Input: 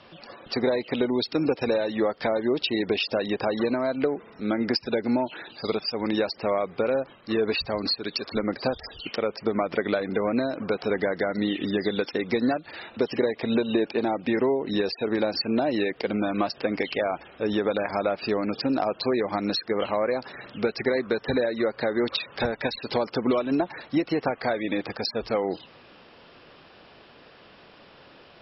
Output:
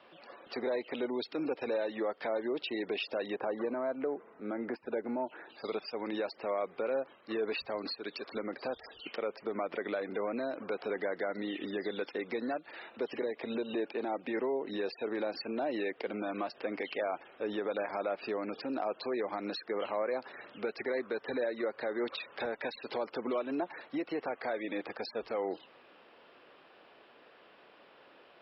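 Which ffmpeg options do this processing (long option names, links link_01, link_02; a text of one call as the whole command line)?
ffmpeg -i in.wav -filter_complex "[0:a]asettb=1/sr,asplit=3[link_01][link_02][link_03];[link_01]atrim=end=3.364[link_04];[link_02]atrim=start=3.36:end=5.49,asetpts=PTS-STARTPTS,afade=type=in:duration=0.004:curve=qsin,afade=type=out:start_time=2.126:duration=0.004:curve=qsin,lowpass=1700[link_05];[link_03]atrim=start=5.486[link_06];[link_04][link_05]acrossfade=duration=0.004:curve1=hsin:curve2=qsin[link_07];[link_07][link_06]acrossfade=duration=0.004:curve1=qsin:curve2=hsin,asettb=1/sr,asplit=3[link_08][link_09][link_10];[link_08]atrim=end=13.224[link_11];[link_09]atrim=start=13.22:end=13.74,asetpts=PTS-STARTPTS,afade=type=in:duration=0.004:curve=qsin,afade=type=out:start_time=0.516:duration=0.004:curve=qsin,acrossover=split=490|3000[link_12][link_13][link_14];[link_13]acompressor=threshold=-32dB:ratio=6:attack=3.2:release=140:knee=2.83:detection=peak[link_15];[link_12][link_15][link_14]amix=inputs=3:normalize=0[link_16];[link_10]atrim=start=13.736[link_17];[link_11][link_16]acrossfade=duration=0.004:curve1=hsin:curve2=qsin[link_18];[link_18][link_17]acrossfade=duration=0.004:curve1=qsin:curve2=hsin,equalizer=frequency=120:width_type=o:width=2.6:gain=3,alimiter=limit=-16.5dB:level=0:latency=1:release=20,acrossover=split=280 3800:gain=0.112 1 0.126[link_19][link_20][link_21];[link_19][link_20][link_21]amix=inputs=3:normalize=0,volume=-6.5dB" out.wav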